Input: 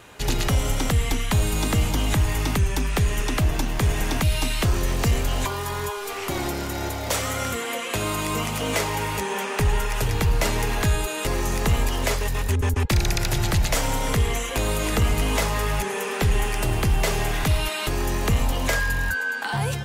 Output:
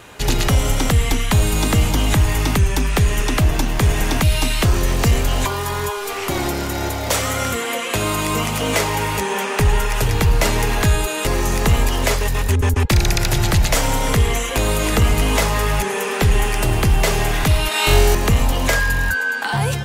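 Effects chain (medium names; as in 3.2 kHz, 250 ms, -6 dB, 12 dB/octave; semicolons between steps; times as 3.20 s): 17.69–18.15 s: flutter echo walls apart 3.7 m, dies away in 0.88 s; trim +5.5 dB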